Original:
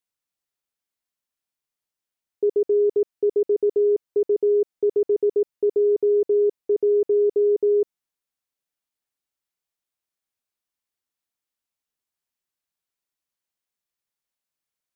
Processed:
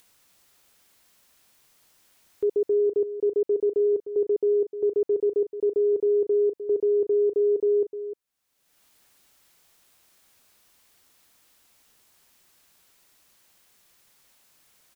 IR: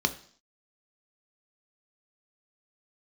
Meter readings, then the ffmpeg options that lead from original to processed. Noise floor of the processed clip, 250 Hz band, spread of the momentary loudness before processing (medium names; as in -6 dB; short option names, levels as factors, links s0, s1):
-74 dBFS, -2.5 dB, 4 LU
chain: -af "acompressor=mode=upward:threshold=0.00891:ratio=2.5,alimiter=limit=0.126:level=0:latency=1:release=30,aecho=1:1:304:0.266"